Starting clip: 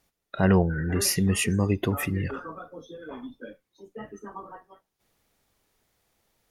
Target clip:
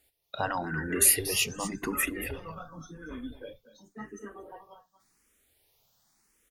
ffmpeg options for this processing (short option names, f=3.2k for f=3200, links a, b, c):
-filter_complex "[0:a]asettb=1/sr,asplit=3[a][b][c];[a]atrim=end=1.164[d];[b]atrim=start=1.16:end=3.4,asetpts=PTS-STARTPTS,afade=t=in:d=0.004:c=qsin,afade=t=out:st=2.236:d=0.004:c=qsin,asubboost=boost=9.5:cutoff=160[e];[c]atrim=start=3.396[f];[d][e]acrossfade=d=0.004:c1=hsin:c2=qsin[g];[g][f]acrossfade=d=0.004:c1=qsin:c2=hsin,afftfilt=real='re*lt(hypot(re,im),0.398)':imag='im*lt(hypot(re,im),0.398)':win_size=1024:overlap=0.75,highshelf=f=3k:g=8.5,aecho=1:1:235:0.224,asplit=2[h][i];[i]afreqshift=0.91[j];[h][j]amix=inputs=2:normalize=1"